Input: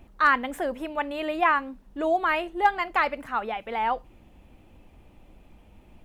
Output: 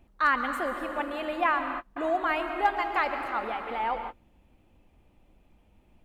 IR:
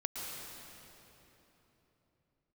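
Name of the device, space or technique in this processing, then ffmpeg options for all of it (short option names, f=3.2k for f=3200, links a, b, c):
keyed gated reverb: -filter_complex "[0:a]asplit=3[a][b][c];[1:a]atrim=start_sample=2205[d];[b][d]afir=irnorm=-1:irlink=0[e];[c]apad=whole_len=266675[f];[e][f]sidechaingate=range=-40dB:threshold=-42dB:ratio=16:detection=peak,volume=-1dB[g];[a][g]amix=inputs=2:normalize=0,volume=-8.5dB"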